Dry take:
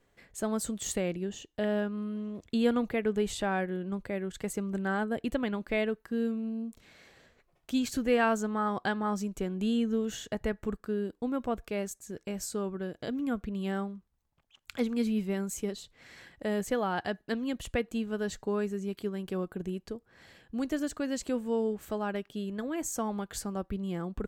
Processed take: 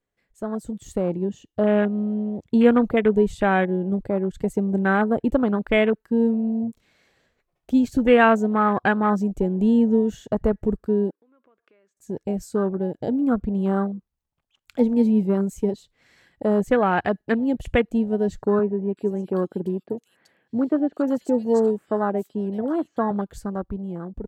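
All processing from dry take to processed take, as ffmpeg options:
-filter_complex "[0:a]asettb=1/sr,asplit=3[s0][s1][s2];[s0]atrim=end=11.104[s3];[s1]atrim=start=11.1:end=11.97,asetpts=PTS-STARTPTS,afade=t=in:d=0.004:c=qsin,afade=t=out:st=0.866:d=0.004:c=qsin,acompressor=threshold=0.00708:ratio=12:attack=3.2:release=140:knee=1:detection=peak,highpass=450,lowpass=2000,equalizer=f=740:w=2.6:g=-10[s4];[s2]atrim=start=11.966[s5];[s3][s4]acrossfade=d=0.004:c1=hsin:c2=qsin[s6];[s6][s5]acrossfade=d=0.004:c1=qsin:c2=hsin,asettb=1/sr,asplit=3[s7][s8][s9];[s7]atrim=end=18.594[s10];[s8]atrim=start=18.59:end=23.11,asetpts=PTS-STARTPTS,afade=t=in:d=0.004:c=qsin,afade=t=out:st=4.516:d=0.004:c=qsin,highpass=180,acrossover=split=2800[s11][s12];[s12]adelay=380[s13];[s11][s13]amix=inputs=2:normalize=0,atrim=end_sample=199332[s14];[s9]atrim=start=23.106[s15];[s10][s14]acrossfade=d=0.004:c1=hsin:c2=qsin[s16];[s16][s15]acrossfade=d=0.004:c1=qsin:c2=hsin,afwtdn=0.0126,dynaudnorm=f=120:g=17:m=2.82,volume=1.26"

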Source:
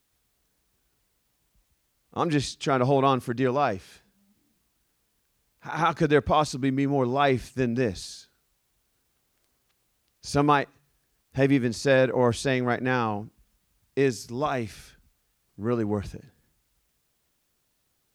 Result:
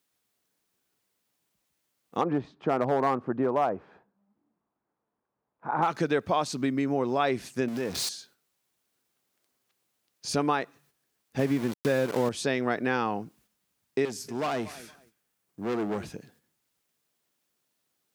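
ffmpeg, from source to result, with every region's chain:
-filter_complex "[0:a]asettb=1/sr,asplit=3[s0][s1][s2];[s0]atrim=end=2.214[s3];[s1]atrim=start=2.21:end=5.88,asetpts=PTS-STARTPTS,afade=t=in:d=0.004:c=qsin,afade=t=out:st=3.666:d=0.004:c=qsin,lowpass=f=980:t=q:w=1.5,aeval=exprs='clip(val(0),-1,0.178)':c=same[s4];[s2]atrim=start=5.876[s5];[s3][s4]acrossfade=d=0.004:c1=hsin:c2=qsin[s6];[s6][s5]acrossfade=d=0.004:c1=qsin:c2=hsin,asettb=1/sr,asplit=3[s7][s8][s9];[s7]atrim=end=7.684[s10];[s8]atrim=start=7.68:end=8.09,asetpts=PTS-STARTPTS,afade=t=in:d=0.004:c=qsin,afade=t=out:st=0.406:d=0.004:c=qsin,aeval=exprs='val(0)+0.5*0.0299*sgn(val(0))':c=same,acompressor=threshold=0.0355:ratio=4:attack=3.2:release=140:knee=1:detection=peak[s11];[s9]atrim=start=8.086[s12];[s10][s11]acrossfade=d=0.004:c1=hsin:c2=qsin[s13];[s13][s12]acrossfade=d=0.004:c1=qsin:c2=hsin,asettb=1/sr,asplit=3[s14][s15][s16];[s14]atrim=end=11.394[s17];[s15]atrim=start=11.39:end=12.29,asetpts=PTS-STARTPTS,afade=t=in:d=0.004:c=qsin,afade=t=out:st=0.896:d=0.004:c=qsin,highpass=f=71:p=1,aemphasis=mode=reproduction:type=bsi,aeval=exprs='val(0)*gte(abs(val(0)),0.0447)':c=same[s18];[s16]atrim=start=12.286[s19];[s17][s18]acrossfade=d=0.004:c1=hsin:c2=qsin[s20];[s20][s19]acrossfade=d=0.004:c1=qsin:c2=hsin,asettb=1/sr,asplit=3[s21][s22][s23];[s21]atrim=end=14.054[s24];[s22]atrim=start=14.05:end=16.07,asetpts=PTS-STARTPTS,afade=t=in:d=0.004:c=qsin,afade=t=out:st=2.016:d=0.004:c=qsin,equalizer=f=4300:t=o:w=1.4:g=-3.5,aecho=1:1:232|464:0.0794|0.0175,atrim=end_sample=89082,asoftclip=type=hard:threshold=0.0376[s25];[s23]atrim=start=16.066[s26];[s24][s25]acrossfade=d=0.004:c1=hsin:c2=qsin[s27];[s27][s26]acrossfade=d=0.004:c1=qsin:c2=hsin,agate=range=0.447:threshold=0.00112:ratio=16:detection=peak,acompressor=threshold=0.0562:ratio=4,highpass=180,volume=1.33"

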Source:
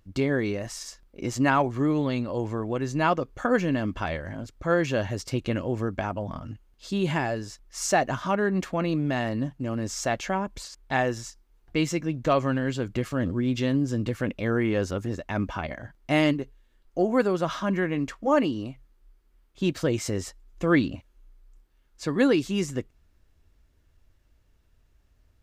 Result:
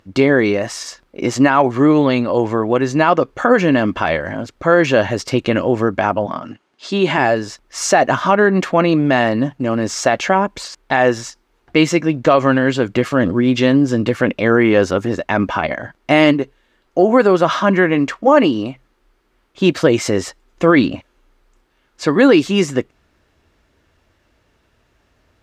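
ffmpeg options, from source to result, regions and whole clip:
-filter_complex "[0:a]asettb=1/sr,asplit=3[s0][s1][s2];[s0]atrim=end=6.264[s3];[s1]atrim=start=6.26:end=7.18,asetpts=PTS-STARTPTS,afade=t=in:d=0.004:c=qsin,afade=t=out:st=0.916:d=0.004:c=qsin,highpass=200,lowpass=8000,bandreject=f=500:w=8.5[s4];[s2]atrim=start=7.176[s5];[s3][s4]acrossfade=d=0.004:c1=hsin:c2=qsin[s6];[s6][s5]acrossfade=d=0.004:c1=qsin:c2=hsin,highpass=f=340:p=1,aemphasis=mode=reproduction:type=50kf,alimiter=level_in=7.08:limit=0.891:release=50:level=0:latency=1,volume=0.891"

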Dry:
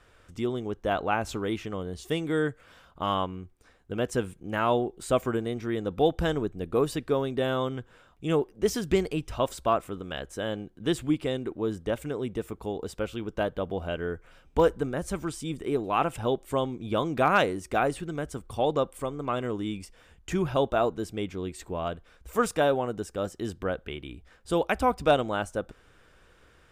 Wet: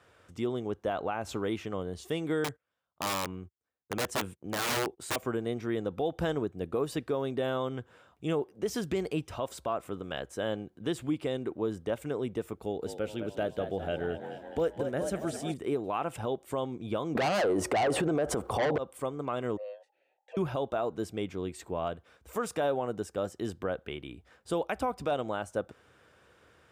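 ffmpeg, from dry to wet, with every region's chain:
-filter_complex "[0:a]asettb=1/sr,asplit=3[s0][s1][s2];[s0]atrim=end=2.444[s3];[s1]atrim=start=2.44:end=5.16,asetpts=PTS-STARTPTS,afade=t=in:d=0.004:c=qsin,afade=t=out:st=2.716:d=0.004:c=qsin,agate=range=0.0355:threshold=0.00398:ratio=16:release=100:detection=peak,aeval=exprs='(mod(13.3*val(0)+1,2)-1)/13.3':c=same[s4];[s2]atrim=start=5.156[s5];[s3][s4]acrossfade=d=0.004:c1=hsin:c2=qsin[s6];[s6][s5]acrossfade=d=0.004:c1=qsin:c2=hsin,asettb=1/sr,asplit=3[s7][s8][s9];[s7]atrim=end=12.554[s10];[s8]atrim=start=12.55:end=15.54,asetpts=PTS-STARTPTS,afade=t=in:d=0.004:c=qsin,afade=t=out:st=2.986:d=0.004:c=qsin,equalizer=f=1000:t=o:w=0.36:g=-12,asplit=8[s11][s12][s13][s14][s15][s16][s17][s18];[s12]adelay=210,afreqshift=56,volume=0.316[s19];[s13]adelay=420,afreqshift=112,volume=0.186[s20];[s14]adelay=630,afreqshift=168,volume=0.11[s21];[s15]adelay=840,afreqshift=224,volume=0.0653[s22];[s16]adelay=1050,afreqshift=280,volume=0.0385[s23];[s17]adelay=1260,afreqshift=336,volume=0.0226[s24];[s18]adelay=1470,afreqshift=392,volume=0.0133[s25];[s11][s19][s20][s21][s22][s23][s24][s25]amix=inputs=8:normalize=0,atrim=end_sample=131859[s26];[s9]atrim=start=15.536[s27];[s10][s26]acrossfade=d=0.004:c1=hsin:c2=qsin[s28];[s28][s27]acrossfade=d=0.004:c1=qsin:c2=hsin,asettb=1/sr,asplit=3[s29][s30][s31];[s29]atrim=end=17.154[s32];[s30]atrim=start=17.15:end=18.78,asetpts=PTS-STARTPTS,afade=t=in:d=0.004:c=qsin,afade=t=out:st=1.626:d=0.004:c=qsin,equalizer=f=640:w=0.56:g=15,acontrast=53,aeval=exprs='1*sin(PI/2*2.24*val(0)/1)':c=same[s33];[s31]atrim=start=18.776[s34];[s32][s33]acrossfade=d=0.004:c1=hsin:c2=qsin[s35];[s35][s34]acrossfade=d=0.004:c1=qsin:c2=hsin,asettb=1/sr,asplit=3[s36][s37][s38];[s36]atrim=end=19.574[s39];[s37]atrim=start=19.57:end=20.37,asetpts=PTS-STARTPTS,afade=t=in:d=0.004:c=qsin,afade=t=out:st=0.796:d=0.004:c=qsin,aeval=exprs='val(0)*sin(2*PI*830*n/s)':c=same,asplit=3[s40][s41][s42];[s40]bandpass=f=530:t=q:w=8,volume=1[s43];[s41]bandpass=f=1840:t=q:w=8,volume=0.501[s44];[s42]bandpass=f=2480:t=q:w=8,volume=0.355[s45];[s43][s44][s45]amix=inputs=3:normalize=0[s46];[s38]atrim=start=20.366[s47];[s39][s46]acrossfade=d=0.004:c1=hsin:c2=qsin[s48];[s48][s47]acrossfade=d=0.004:c1=qsin:c2=hsin,highpass=f=72:w=0.5412,highpass=f=72:w=1.3066,equalizer=f=660:t=o:w=1.7:g=3.5,alimiter=limit=0.126:level=0:latency=1:release=134,volume=0.708"

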